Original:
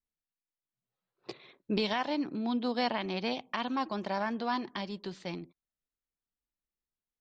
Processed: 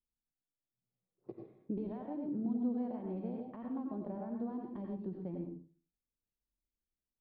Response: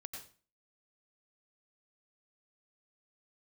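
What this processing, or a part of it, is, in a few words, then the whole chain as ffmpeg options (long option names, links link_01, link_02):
television next door: -filter_complex "[0:a]acompressor=threshold=-34dB:ratio=6,lowpass=420[link_01];[1:a]atrim=start_sample=2205[link_02];[link_01][link_02]afir=irnorm=-1:irlink=0,volume=6dB"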